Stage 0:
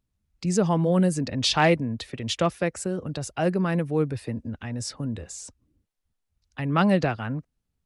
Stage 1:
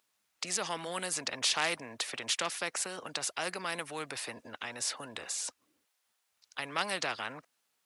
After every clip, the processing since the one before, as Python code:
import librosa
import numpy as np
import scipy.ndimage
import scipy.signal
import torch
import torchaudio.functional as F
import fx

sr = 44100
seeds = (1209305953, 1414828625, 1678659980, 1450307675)

y = scipy.signal.sosfilt(scipy.signal.butter(2, 790.0, 'highpass', fs=sr, output='sos'), x)
y = fx.spectral_comp(y, sr, ratio=2.0)
y = y * librosa.db_to_amplitude(-4.5)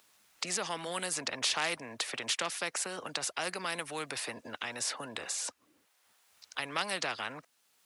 y = fx.band_squash(x, sr, depth_pct=40)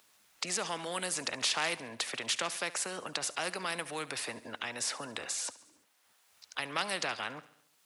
y = fx.echo_feedback(x, sr, ms=70, feedback_pct=58, wet_db=-18.0)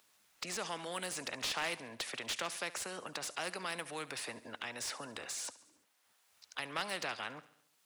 y = fx.slew_limit(x, sr, full_power_hz=150.0)
y = y * librosa.db_to_amplitude(-4.0)